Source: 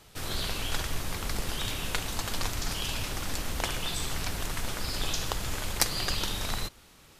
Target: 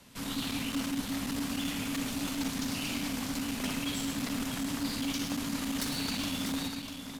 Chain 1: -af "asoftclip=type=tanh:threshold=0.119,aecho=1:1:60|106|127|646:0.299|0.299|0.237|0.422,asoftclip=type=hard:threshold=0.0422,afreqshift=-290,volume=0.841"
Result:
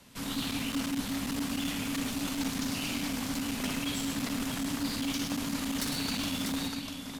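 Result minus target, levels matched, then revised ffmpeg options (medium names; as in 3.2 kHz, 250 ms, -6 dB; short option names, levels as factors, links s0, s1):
saturation: distortion -6 dB
-af "asoftclip=type=tanh:threshold=0.0473,aecho=1:1:60|106|127|646:0.299|0.299|0.237|0.422,asoftclip=type=hard:threshold=0.0422,afreqshift=-290,volume=0.841"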